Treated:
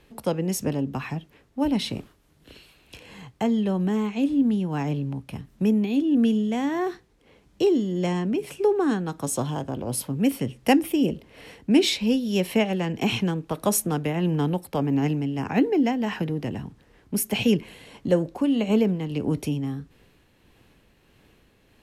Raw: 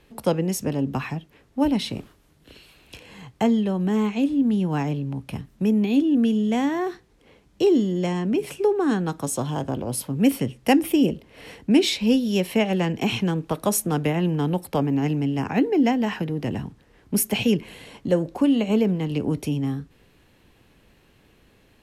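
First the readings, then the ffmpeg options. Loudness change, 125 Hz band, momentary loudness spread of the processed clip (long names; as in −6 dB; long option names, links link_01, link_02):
−1.5 dB, −1.5 dB, 11 LU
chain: -af "tremolo=f=1.6:d=0.35"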